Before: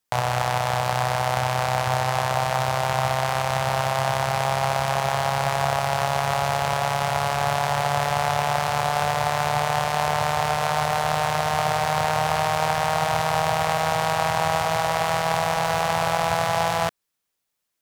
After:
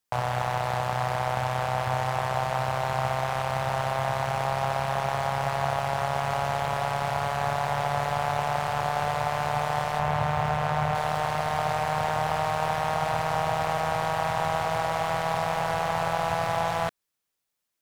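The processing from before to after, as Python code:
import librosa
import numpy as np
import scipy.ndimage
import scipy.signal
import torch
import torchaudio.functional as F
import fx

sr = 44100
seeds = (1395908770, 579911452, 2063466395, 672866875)

y = fx.bass_treble(x, sr, bass_db=6, treble_db=-8, at=(9.99, 10.95))
y = fx.slew_limit(y, sr, full_power_hz=190.0)
y = y * librosa.db_to_amplitude(-3.0)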